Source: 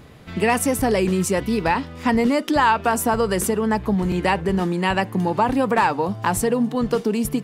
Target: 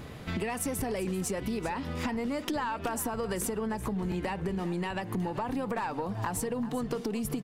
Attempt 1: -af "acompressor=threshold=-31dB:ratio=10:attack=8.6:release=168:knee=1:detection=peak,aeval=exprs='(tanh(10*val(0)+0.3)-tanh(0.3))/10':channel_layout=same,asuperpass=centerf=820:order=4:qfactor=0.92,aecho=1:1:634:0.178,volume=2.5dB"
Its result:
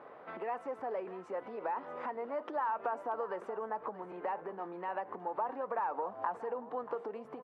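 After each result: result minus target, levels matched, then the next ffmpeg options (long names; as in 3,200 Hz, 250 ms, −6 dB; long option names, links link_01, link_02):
echo 245 ms late; 1,000 Hz band +5.5 dB
-af "acompressor=threshold=-31dB:ratio=10:attack=8.6:release=168:knee=1:detection=peak,aeval=exprs='(tanh(10*val(0)+0.3)-tanh(0.3))/10':channel_layout=same,asuperpass=centerf=820:order=4:qfactor=0.92,aecho=1:1:389:0.178,volume=2.5dB"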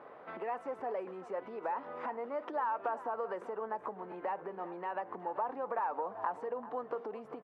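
1,000 Hz band +5.5 dB
-af "acompressor=threshold=-31dB:ratio=10:attack=8.6:release=168:knee=1:detection=peak,aeval=exprs='(tanh(10*val(0)+0.3)-tanh(0.3))/10':channel_layout=same,aecho=1:1:389:0.178,volume=2.5dB"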